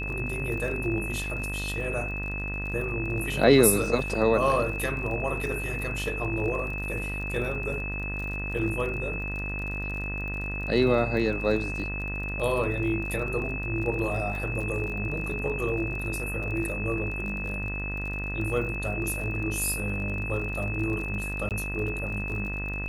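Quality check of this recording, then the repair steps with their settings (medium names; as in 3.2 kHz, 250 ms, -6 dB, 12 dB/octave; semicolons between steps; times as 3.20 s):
buzz 50 Hz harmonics 40 -34 dBFS
crackle 37 per s -35 dBFS
whine 2.6 kHz -33 dBFS
1.24 s: dropout 2.8 ms
21.49–21.51 s: dropout 18 ms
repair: de-click; de-hum 50 Hz, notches 40; band-stop 2.6 kHz, Q 30; interpolate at 1.24 s, 2.8 ms; interpolate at 21.49 s, 18 ms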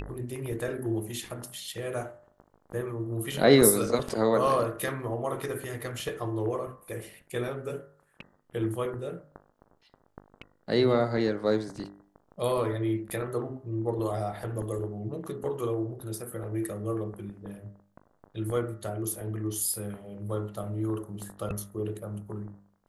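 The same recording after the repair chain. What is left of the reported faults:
nothing left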